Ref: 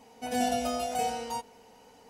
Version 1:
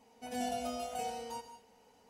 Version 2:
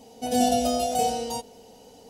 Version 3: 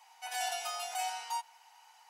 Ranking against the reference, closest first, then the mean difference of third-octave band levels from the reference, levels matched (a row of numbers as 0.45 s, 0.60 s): 1, 2, 3; 1.5 dB, 2.5 dB, 11.5 dB